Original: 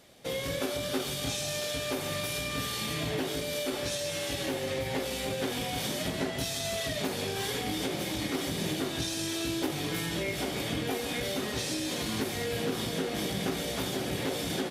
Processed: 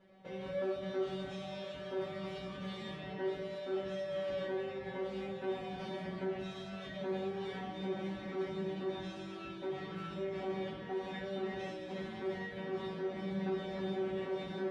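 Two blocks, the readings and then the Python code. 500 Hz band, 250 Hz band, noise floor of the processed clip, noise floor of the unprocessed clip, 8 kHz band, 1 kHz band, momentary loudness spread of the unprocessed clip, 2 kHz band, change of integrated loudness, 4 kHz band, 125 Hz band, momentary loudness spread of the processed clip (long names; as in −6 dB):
−3.5 dB, −6.5 dB, −46 dBFS, −35 dBFS, below −30 dB, −6.5 dB, 1 LU, −11.0 dB, −8.0 dB, −17.0 dB, −9.0 dB, 6 LU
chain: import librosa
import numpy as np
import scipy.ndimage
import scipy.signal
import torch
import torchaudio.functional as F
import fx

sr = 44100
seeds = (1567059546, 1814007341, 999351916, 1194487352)

p1 = scipy.signal.sosfilt(scipy.signal.butter(2, 1700.0, 'lowpass', fs=sr, output='sos'), x)
p2 = fx.over_compress(p1, sr, threshold_db=-37.0, ratio=-1.0)
p3 = p1 + (p2 * 10.0 ** (-2.0 / 20.0))
p4 = fx.comb_fb(p3, sr, f0_hz=190.0, decay_s=0.3, harmonics='all', damping=0.0, mix_pct=100)
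y = p4 * 10.0 ** (2.5 / 20.0)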